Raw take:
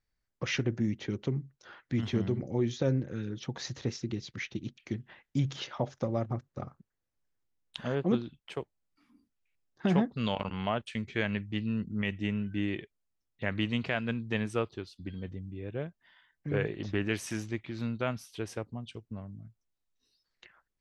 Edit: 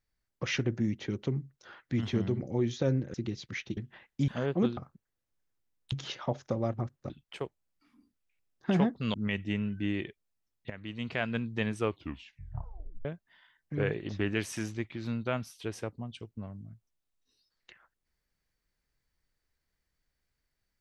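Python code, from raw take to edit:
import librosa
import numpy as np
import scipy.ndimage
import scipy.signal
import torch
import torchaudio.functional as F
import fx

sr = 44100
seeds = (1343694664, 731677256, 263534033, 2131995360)

y = fx.edit(x, sr, fx.cut(start_s=3.14, length_s=0.85),
    fx.cut(start_s=4.62, length_s=0.31),
    fx.swap(start_s=5.44, length_s=1.18, other_s=7.77, other_length_s=0.49),
    fx.cut(start_s=10.3, length_s=1.58),
    fx.fade_in_from(start_s=13.44, length_s=0.51, curve='qua', floor_db=-13.5),
    fx.tape_stop(start_s=14.54, length_s=1.25), tone=tone)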